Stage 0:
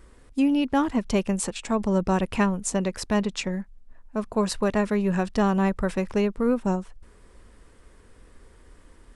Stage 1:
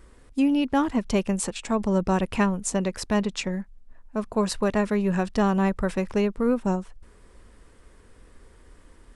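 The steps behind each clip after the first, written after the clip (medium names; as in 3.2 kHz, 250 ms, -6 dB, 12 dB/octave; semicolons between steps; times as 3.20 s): no audible change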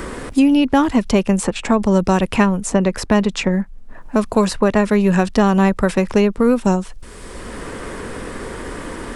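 three bands compressed up and down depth 70%; trim +8.5 dB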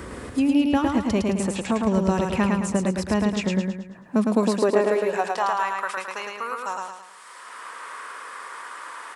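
high-pass sweep 75 Hz -> 1.1 kHz, 3.52–5.58 s; on a send: feedback delay 108 ms, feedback 44%, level -3 dB; on the sum: trim -9 dB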